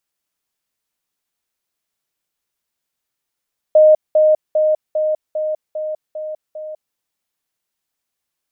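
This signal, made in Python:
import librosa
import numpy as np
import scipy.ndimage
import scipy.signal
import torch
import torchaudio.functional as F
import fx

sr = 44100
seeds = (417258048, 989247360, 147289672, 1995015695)

y = fx.level_ladder(sr, hz=618.0, from_db=-5.5, step_db=-3.0, steps=8, dwell_s=0.2, gap_s=0.2)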